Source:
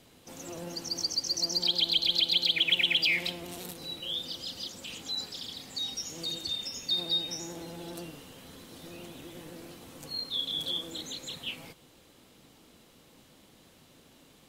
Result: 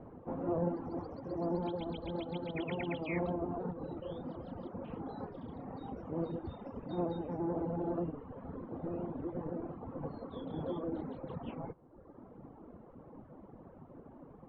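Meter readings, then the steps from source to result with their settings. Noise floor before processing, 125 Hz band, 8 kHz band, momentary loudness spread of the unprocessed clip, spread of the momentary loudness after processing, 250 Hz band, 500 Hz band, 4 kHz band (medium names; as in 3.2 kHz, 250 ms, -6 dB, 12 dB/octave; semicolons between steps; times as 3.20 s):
-59 dBFS, +7.0 dB, under -40 dB, 22 LU, 18 LU, +7.0 dB, +7.0 dB, -30.5 dB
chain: reverb removal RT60 1.2 s; low-pass 1.1 kHz 24 dB/octave; trim +10 dB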